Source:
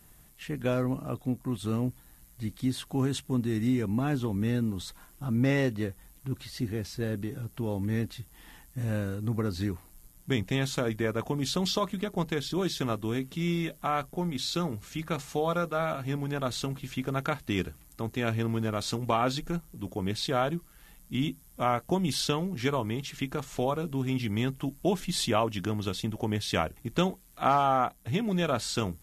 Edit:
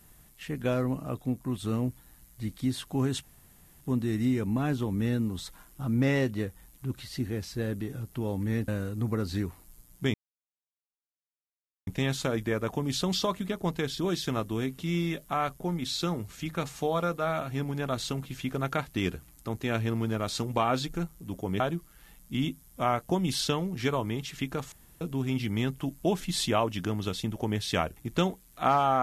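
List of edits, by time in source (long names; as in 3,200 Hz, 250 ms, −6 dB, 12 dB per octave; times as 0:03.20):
0:03.23: splice in room tone 0.58 s
0:08.10–0:08.94: remove
0:10.40: splice in silence 1.73 s
0:20.13–0:20.40: remove
0:23.52–0:23.81: fill with room tone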